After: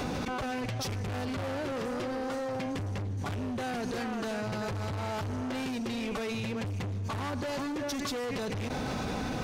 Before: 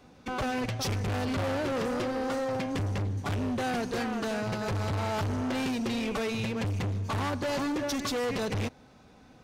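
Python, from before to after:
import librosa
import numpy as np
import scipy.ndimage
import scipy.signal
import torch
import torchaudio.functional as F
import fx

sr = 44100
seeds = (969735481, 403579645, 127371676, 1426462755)

y = fx.env_flatten(x, sr, amount_pct=100)
y = y * 10.0 ** (-5.0 / 20.0)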